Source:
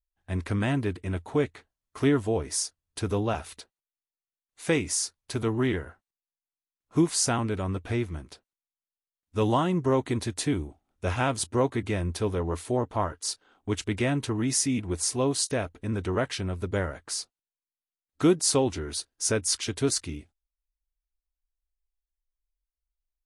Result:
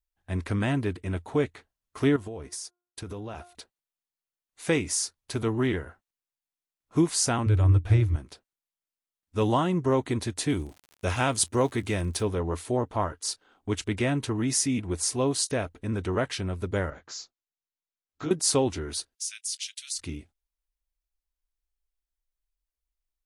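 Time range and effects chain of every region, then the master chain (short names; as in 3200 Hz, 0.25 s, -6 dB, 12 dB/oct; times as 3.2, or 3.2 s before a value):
2.16–3.55 expander -34 dBFS + de-hum 353.6 Hz, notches 4 + compressor 10:1, threshold -33 dBFS
7.46–8.16 resonant low shelf 140 Hz +9 dB, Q 3 + AM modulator 210 Hz, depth 20%
10.48–12.21 expander -50 dBFS + high shelf 3700 Hz +7.5 dB + crackle 90/s -39 dBFS
16.9–18.31 Chebyshev low-pass 7400 Hz, order 10 + compressor 3:1, threshold -27 dBFS + detuned doubles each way 50 cents
19.15–19.99 inverse Chebyshev high-pass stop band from 580 Hz, stop band 70 dB + compressor, threshold -28 dBFS
whole clip: dry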